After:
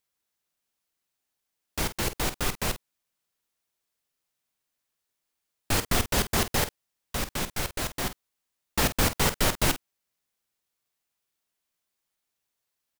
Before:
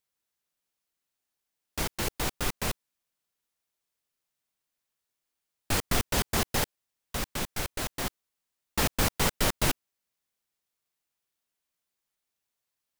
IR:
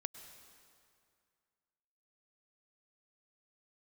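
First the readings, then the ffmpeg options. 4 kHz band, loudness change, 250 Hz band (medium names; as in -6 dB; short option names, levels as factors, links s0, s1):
+2.5 dB, +2.5 dB, +2.0 dB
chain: -filter_complex "[0:a]asplit=2[s0][s1];[s1]adelay=48,volume=0.251[s2];[s0][s2]amix=inputs=2:normalize=0,volume=1.26"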